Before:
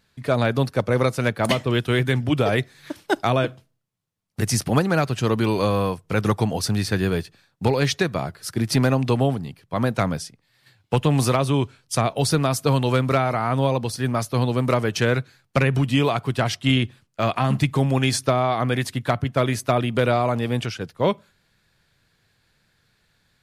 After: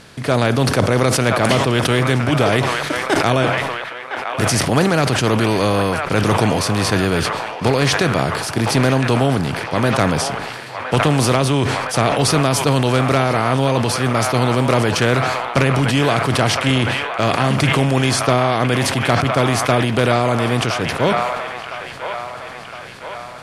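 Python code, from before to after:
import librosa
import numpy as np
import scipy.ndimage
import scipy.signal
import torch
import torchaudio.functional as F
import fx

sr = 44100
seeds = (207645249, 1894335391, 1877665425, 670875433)

p1 = fx.bin_compress(x, sr, power=0.6)
p2 = scipy.signal.sosfilt(scipy.signal.butter(4, 12000.0, 'lowpass', fs=sr, output='sos'), p1)
p3 = p2 + fx.echo_wet_bandpass(p2, sr, ms=1012, feedback_pct=58, hz=1400.0, wet_db=-5, dry=0)
y = fx.sustainer(p3, sr, db_per_s=31.0)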